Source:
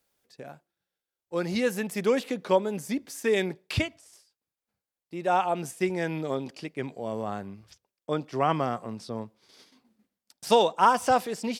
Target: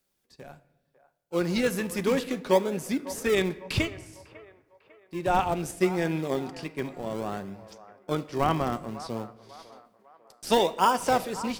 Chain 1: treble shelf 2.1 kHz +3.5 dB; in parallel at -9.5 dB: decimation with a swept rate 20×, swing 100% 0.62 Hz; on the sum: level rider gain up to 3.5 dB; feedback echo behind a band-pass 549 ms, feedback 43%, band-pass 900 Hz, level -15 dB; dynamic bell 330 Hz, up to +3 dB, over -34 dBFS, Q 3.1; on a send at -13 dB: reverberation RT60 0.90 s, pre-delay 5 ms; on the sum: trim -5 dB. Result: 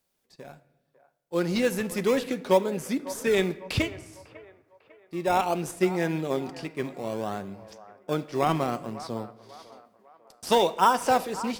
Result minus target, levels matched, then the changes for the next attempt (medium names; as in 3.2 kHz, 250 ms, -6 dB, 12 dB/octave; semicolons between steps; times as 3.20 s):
decimation with a swept rate: distortion -12 dB
change: decimation with a swept rate 43×, swing 100% 0.62 Hz